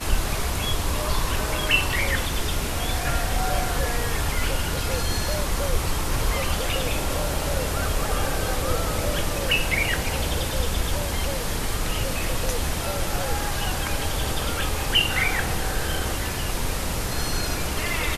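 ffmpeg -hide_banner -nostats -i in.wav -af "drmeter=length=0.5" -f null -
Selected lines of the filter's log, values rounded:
Channel 1: DR: 12.3
Overall DR: 12.3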